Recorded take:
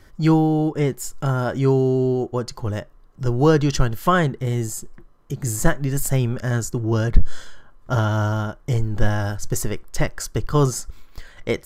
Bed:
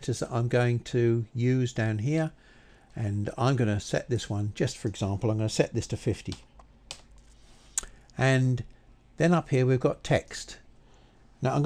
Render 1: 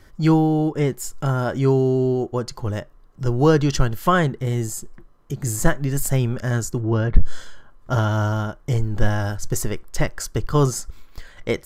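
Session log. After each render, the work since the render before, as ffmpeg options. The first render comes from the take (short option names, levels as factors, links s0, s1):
-filter_complex "[0:a]asettb=1/sr,asplit=3[s0][s1][s2];[s0]atrim=end=6.814[s3];[s1]atrim=start=6.81:end=7.22,asetpts=PTS-STARTPTS,afade=t=in:d=0.004:c=qsin,afade=t=out:st=0.406:d=0.004:c=qsin,lowpass=2900[s4];[s2]atrim=start=7.216[s5];[s3][s4]acrossfade=d=0.004:c1=hsin:c2=qsin[s6];[s6][s5]acrossfade=d=0.004:c1=qsin:c2=hsin"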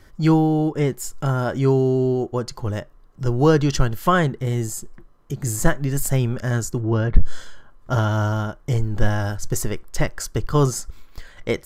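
-af anull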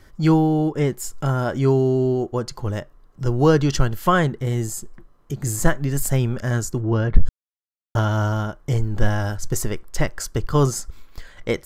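-filter_complex "[0:a]asplit=3[s0][s1][s2];[s0]atrim=end=7.29,asetpts=PTS-STARTPTS,afade=t=out:st=7.286:d=0.004:c=hsin[s3];[s1]atrim=start=7.29:end=7.95,asetpts=PTS-STARTPTS,volume=0[s4];[s2]atrim=start=7.95,asetpts=PTS-STARTPTS,afade=t=in:d=0.004:c=hsin[s5];[s3][s4][s5]concat=n=3:v=0:a=1"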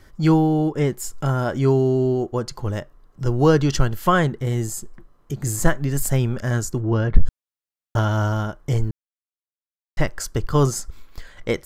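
-filter_complex "[0:a]asplit=3[s0][s1][s2];[s0]atrim=end=8.91,asetpts=PTS-STARTPTS,afade=t=out:st=8.906:d=0.004:c=hsin[s3];[s1]atrim=start=8.91:end=9.97,asetpts=PTS-STARTPTS,volume=0[s4];[s2]atrim=start=9.97,asetpts=PTS-STARTPTS,afade=t=in:d=0.004:c=hsin[s5];[s3][s4][s5]concat=n=3:v=0:a=1"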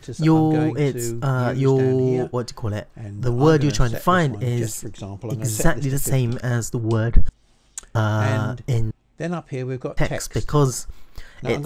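-filter_complex "[1:a]volume=0.668[s0];[0:a][s0]amix=inputs=2:normalize=0"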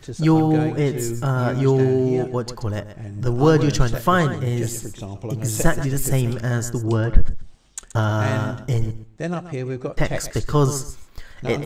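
-af "aecho=1:1:128|256:0.237|0.0427"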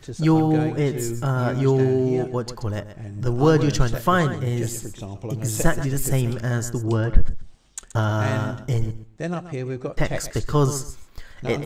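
-af "volume=0.841"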